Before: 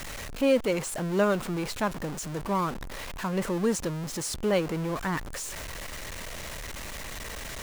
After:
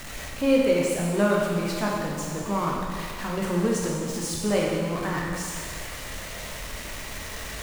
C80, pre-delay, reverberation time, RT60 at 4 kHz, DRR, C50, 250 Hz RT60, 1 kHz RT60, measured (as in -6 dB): 2.0 dB, 12 ms, 1.8 s, 1.7 s, -3.0 dB, 0.0 dB, 1.9 s, 1.8 s